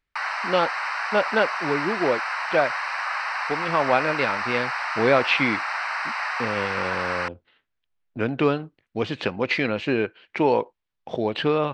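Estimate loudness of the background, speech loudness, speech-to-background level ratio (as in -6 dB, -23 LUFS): -27.0 LUFS, -25.0 LUFS, 2.0 dB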